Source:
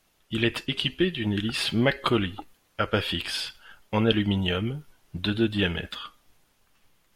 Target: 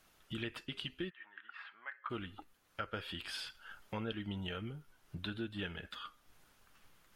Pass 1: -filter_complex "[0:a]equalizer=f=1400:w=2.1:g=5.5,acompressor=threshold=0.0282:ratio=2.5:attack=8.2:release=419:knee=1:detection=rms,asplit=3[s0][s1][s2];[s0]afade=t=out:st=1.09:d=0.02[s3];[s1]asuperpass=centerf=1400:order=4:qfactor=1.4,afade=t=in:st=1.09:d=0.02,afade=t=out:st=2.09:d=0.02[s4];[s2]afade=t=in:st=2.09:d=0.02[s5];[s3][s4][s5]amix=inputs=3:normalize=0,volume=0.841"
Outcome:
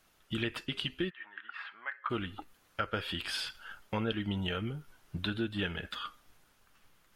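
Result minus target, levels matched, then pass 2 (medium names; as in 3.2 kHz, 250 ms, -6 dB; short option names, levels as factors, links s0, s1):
compression: peak gain reduction -7 dB
-filter_complex "[0:a]equalizer=f=1400:w=2.1:g=5.5,acompressor=threshold=0.0075:ratio=2.5:attack=8.2:release=419:knee=1:detection=rms,asplit=3[s0][s1][s2];[s0]afade=t=out:st=1.09:d=0.02[s3];[s1]asuperpass=centerf=1400:order=4:qfactor=1.4,afade=t=in:st=1.09:d=0.02,afade=t=out:st=2.09:d=0.02[s4];[s2]afade=t=in:st=2.09:d=0.02[s5];[s3][s4][s5]amix=inputs=3:normalize=0,volume=0.841"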